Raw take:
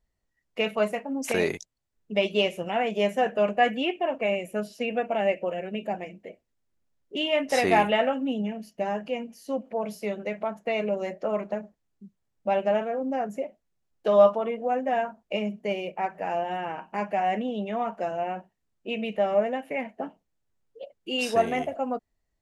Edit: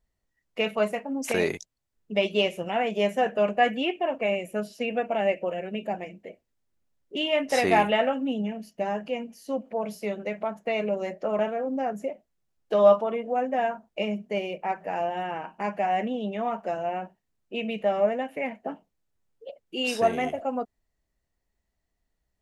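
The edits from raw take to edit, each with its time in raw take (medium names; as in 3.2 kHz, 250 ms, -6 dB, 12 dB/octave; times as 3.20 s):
11.39–12.73 s: delete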